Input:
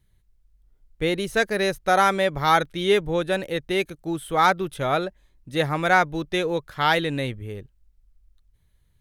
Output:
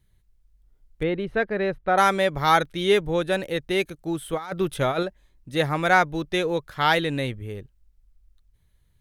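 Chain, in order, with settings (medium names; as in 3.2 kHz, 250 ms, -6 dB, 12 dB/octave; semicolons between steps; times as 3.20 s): 1.03–1.98 s: distance through air 470 m; 4.33–5.03 s: compressor with a negative ratio -24 dBFS, ratio -0.5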